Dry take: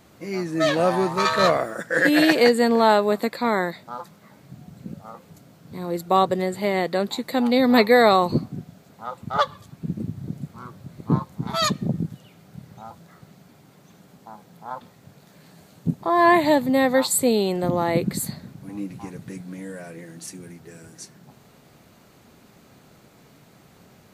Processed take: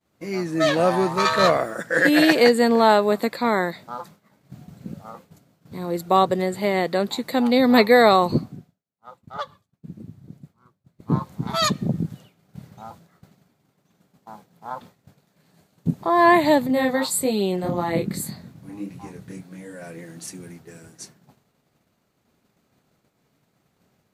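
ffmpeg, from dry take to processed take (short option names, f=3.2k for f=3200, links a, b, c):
-filter_complex "[0:a]asettb=1/sr,asplit=3[a][b][c];[a]atrim=end=16.674[d];[b]atrim=start=16.67:end=19.82,asetpts=PTS-STARTPTS,afade=t=in:d=0.004:c=qsin,afade=t=out:st=3.146:d=0.004:c=qsin,flanger=delay=22.5:depth=5:speed=1.7[e];[c]atrim=start=19.816[f];[d][e]acrossfade=d=0.004:c1=hsin:c2=qsin[g];[g][f]acrossfade=d=0.004:c1=qsin:c2=hsin,asplit=3[h][i][j];[h]atrim=end=8.63,asetpts=PTS-STARTPTS,afade=t=out:st=8.35:d=0.28:silence=0.281838[k];[i]atrim=start=8.63:end=10.93,asetpts=PTS-STARTPTS,volume=-11dB[l];[j]atrim=start=10.93,asetpts=PTS-STARTPTS,afade=t=in:d=0.28:silence=0.281838[m];[k][l][m]concat=n=3:v=0:a=1,agate=range=-33dB:threshold=-41dB:ratio=3:detection=peak,volume=1dB"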